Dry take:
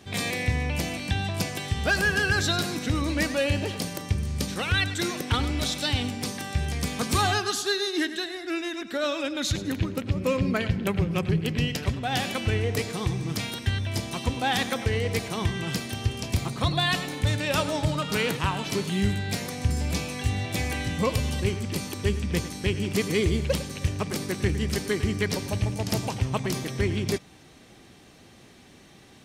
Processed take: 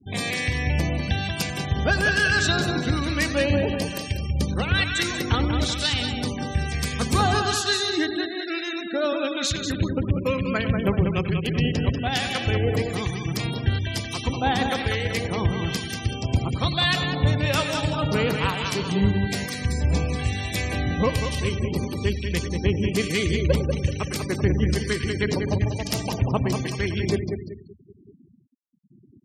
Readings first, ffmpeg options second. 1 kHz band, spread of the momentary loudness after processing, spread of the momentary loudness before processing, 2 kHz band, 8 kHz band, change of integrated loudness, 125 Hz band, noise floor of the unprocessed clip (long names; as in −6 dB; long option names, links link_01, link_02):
+3.0 dB, 6 LU, 5 LU, +3.0 dB, +0.5 dB, +3.0 dB, +3.5 dB, −52 dBFS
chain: -filter_complex "[0:a]aecho=1:1:191|382|573|764|955|1146:0.501|0.251|0.125|0.0626|0.0313|0.0157,acrossover=split=1200[link_01][link_02];[link_01]aeval=exprs='val(0)*(1-0.5/2+0.5/2*cos(2*PI*1.1*n/s))':channel_layout=same[link_03];[link_02]aeval=exprs='val(0)*(1-0.5/2-0.5/2*cos(2*PI*1.1*n/s))':channel_layout=same[link_04];[link_03][link_04]amix=inputs=2:normalize=0,afftfilt=real='re*gte(hypot(re,im),0.0141)':imag='im*gte(hypot(re,im),0.0141)':win_size=1024:overlap=0.75,volume=4dB"